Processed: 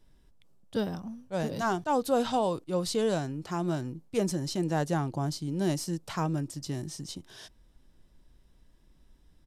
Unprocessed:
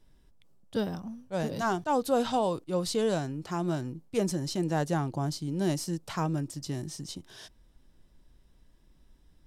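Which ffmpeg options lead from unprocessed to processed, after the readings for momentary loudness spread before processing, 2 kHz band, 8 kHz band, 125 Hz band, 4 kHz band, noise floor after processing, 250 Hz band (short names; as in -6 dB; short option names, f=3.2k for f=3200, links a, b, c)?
9 LU, 0.0 dB, 0.0 dB, 0.0 dB, 0.0 dB, -61 dBFS, 0.0 dB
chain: -af "aresample=32000,aresample=44100"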